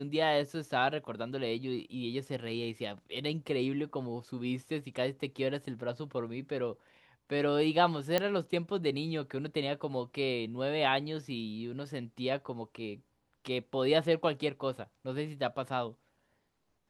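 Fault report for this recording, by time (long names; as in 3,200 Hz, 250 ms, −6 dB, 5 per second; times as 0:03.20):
0:08.18: click −14 dBFS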